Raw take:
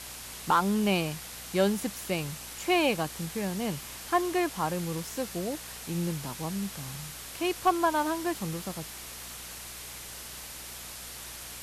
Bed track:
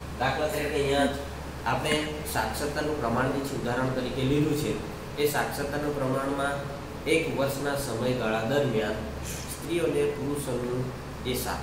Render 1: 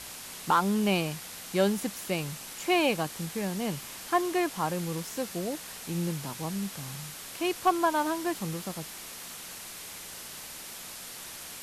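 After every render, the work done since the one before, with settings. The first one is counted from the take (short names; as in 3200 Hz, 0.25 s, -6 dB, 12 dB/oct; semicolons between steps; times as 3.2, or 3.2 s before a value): de-hum 60 Hz, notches 2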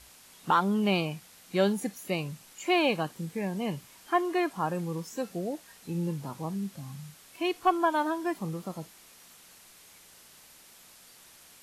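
noise print and reduce 12 dB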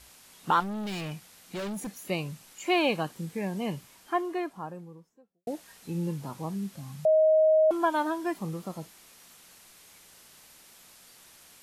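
0.6–2.1 overloaded stage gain 32.5 dB; 3.64–5.47 studio fade out; 7.05–7.71 bleep 628 Hz -17.5 dBFS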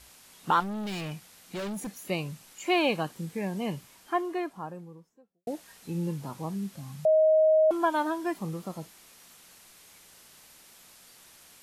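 nothing audible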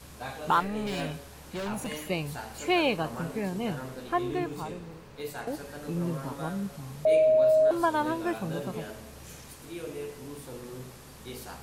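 add bed track -12 dB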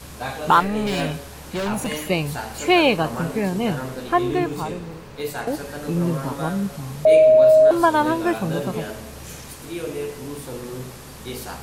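gain +9 dB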